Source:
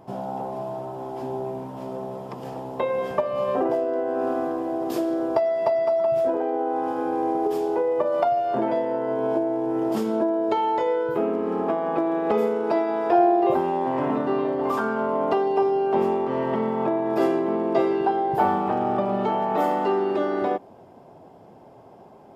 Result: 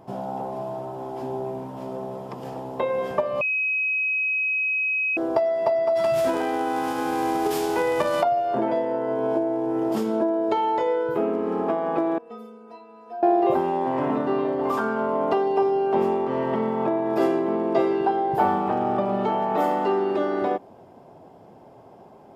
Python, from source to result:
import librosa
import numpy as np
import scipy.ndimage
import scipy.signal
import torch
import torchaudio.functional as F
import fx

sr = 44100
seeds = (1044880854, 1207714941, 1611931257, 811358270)

y = fx.envelope_flatten(x, sr, power=0.6, at=(5.95, 8.21), fade=0.02)
y = fx.stiff_resonator(y, sr, f0_hz=230.0, decay_s=0.51, stiffness=0.008, at=(12.18, 13.23))
y = fx.edit(y, sr, fx.bleep(start_s=3.41, length_s=1.76, hz=2540.0, db=-21.0), tone=tone)